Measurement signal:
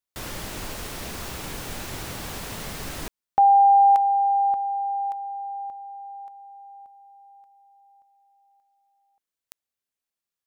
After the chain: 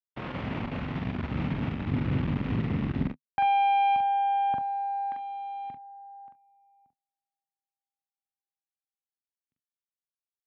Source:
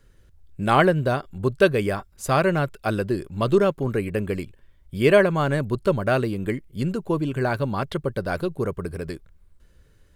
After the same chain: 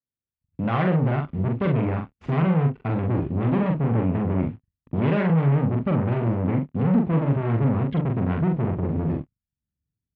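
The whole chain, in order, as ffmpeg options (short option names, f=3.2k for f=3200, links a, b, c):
-filter_complex "[0:a]agate=range=-37dB:threshold=-44dB:ratio=16:release=103:detection=peak,asubboost=boost=11:cutoff=190,aeval=exprs='(tanh(17.8*val(0)+0.7)-tanh(0.7))/17.8':c=same,asplit=2[a][b];[b]acrusher=bits=6:mix=0:aa=0.000001,volume=-7dB[c];[a][c]amix=inputs=2:normalize=0,highpass=110,equalizer=f=150:t=q:w=4:g=3,equalizer=f=250:t=q:w=4:g=8,equalizer=f=1.6k:t=q:w=4:g=-4,lowpass=f=2.6k:w=0.5412,lowpass=f=2.6k:w=1.3066,aecho=1:1:43|70:0.668|0.141"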